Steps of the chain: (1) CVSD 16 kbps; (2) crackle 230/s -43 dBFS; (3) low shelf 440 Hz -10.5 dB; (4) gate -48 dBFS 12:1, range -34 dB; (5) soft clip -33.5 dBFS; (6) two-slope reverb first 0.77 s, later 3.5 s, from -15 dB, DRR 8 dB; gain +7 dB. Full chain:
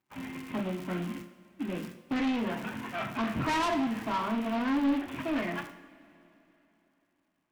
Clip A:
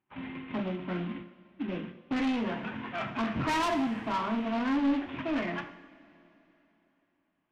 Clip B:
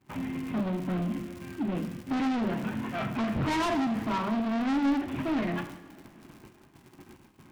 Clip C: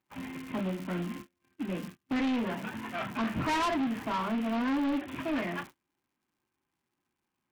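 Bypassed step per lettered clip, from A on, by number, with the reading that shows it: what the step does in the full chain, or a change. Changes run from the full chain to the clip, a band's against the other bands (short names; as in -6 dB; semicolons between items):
2, 8 kHz band -2.0 dB; 3, 125 Hz band +5.5 dB; 6, crest factor change -5.5 dB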